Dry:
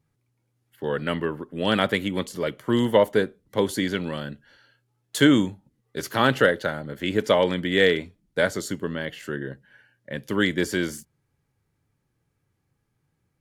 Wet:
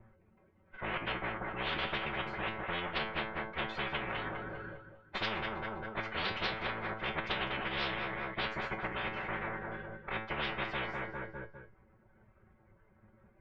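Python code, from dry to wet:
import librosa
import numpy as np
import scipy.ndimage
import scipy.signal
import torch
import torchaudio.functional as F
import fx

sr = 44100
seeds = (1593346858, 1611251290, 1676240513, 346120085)

p1 = fx.lower_of_two(x, sr, delay_ms=1.4)
p2 = fx.dereverb_blind(p1, sr, rt60_s=0.86)
p3 = scipy.signal.sosfilt(scipy.signal.butter(4, 1900.0, 'lowpass', fs=sr, output='sos'), p2)
p4 = p3 + 0.66 * np.pad(p3, (int(3.9 * sr / 1000.0), 0))[:len(p3)]
p5 = 10.0 ** (-9.0 / 20.0) * np.tanh(p4 / 10.0 ** (-9.0 / 20.0))
p6 = fx.pitch_keep_formants(p5, sr, semitones=-5.5)
p7 = fx.wow_flutter(p6, sr, seeds[0], rate_hz=2.1, depth_cents=16.0)
p8 = fx.comb_fb(p7, sr, f0_hz=110.0, decay_s=0.25, harmonics='all', damping=0.0, mix_pct=80)
p9 = p8 + fx.echo_feedback(p8, sr, ms=201, feedback_pct=40, wet_db=-15.0, dry=0)
p10 = fx.spectral_comp(p9, sr, ratio=10.0)
y = p10 * librosa.db_to_amplitude(-7.0)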